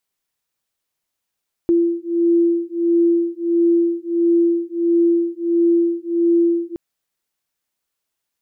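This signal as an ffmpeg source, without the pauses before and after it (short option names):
-f lavfi -i "aevalsrc='0.141*(sin(2*PI*339*t)+sin(2*PI*340.5*t))':d=5.07:s=44100"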